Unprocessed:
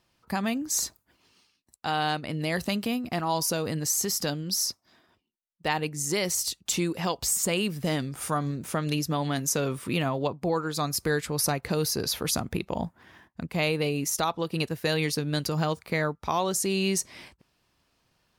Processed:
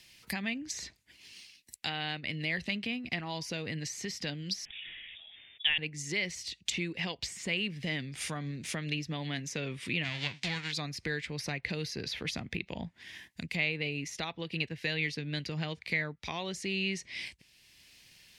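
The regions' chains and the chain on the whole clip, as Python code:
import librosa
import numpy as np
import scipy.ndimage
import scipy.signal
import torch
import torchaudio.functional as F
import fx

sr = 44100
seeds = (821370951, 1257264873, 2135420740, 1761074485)

y = fx.chain(x, sr, fx.freq_invert(carrier_hz=3600),
    fx.sustainer(db_per_s=26.0), at=(4.65, 5.78))
y = fx.envelope_flatten(y, sr, power=0.3, at=(10.03, 10.71), fade=0.02)
y = fx.lowpass(y, sr, hz=6000.0, slope=12, at=(10.03, 10.71), fade=0.02)
y = fx.peak_eq(y, sr, hz=460.0, db=-5.5, octaves=1.5, at=(10.03, 10.71), fade=0.02)
y = fx.env_lowpass_down(y, sr, base_hz=2100.0, full_db=-25.5)
y = fx.curve_eq(y, sr, hz=(170.0, 1300.0, 2000.0), db=(0, -8, 13))
y = fx.band_squash(y, sr, depth_pct=40)
y = y * librosa.db_to_amplitude(-7.5)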